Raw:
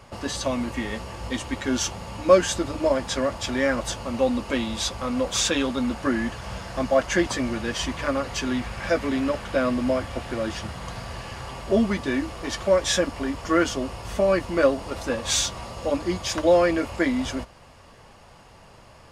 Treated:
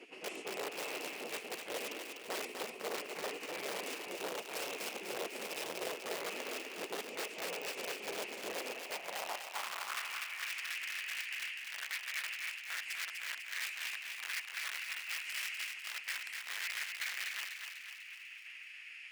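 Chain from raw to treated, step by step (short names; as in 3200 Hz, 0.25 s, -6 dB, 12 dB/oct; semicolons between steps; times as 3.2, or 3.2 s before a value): spectral gate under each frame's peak -15 dB weak; EQ curve 110 Hz 0 dB, 230 Hz +6 dB, 390 Hz -4 dB, 1500 Hz -20 dB, 2600 Hz -2 dB, 3700 Hz -21 dB; reverse; compressor 5:1, threshold -52 dBFS, peak gain reduction 24 dB; reverse; wrapped overs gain 47 dB; high-pass sweep 450 Hz -> 1800 Hz, 8.59–10.43; on a send: thinning echo 0.248 s, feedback 55%, high-pass 710 Hz, level -5 dB; on the sum: gain +12 dB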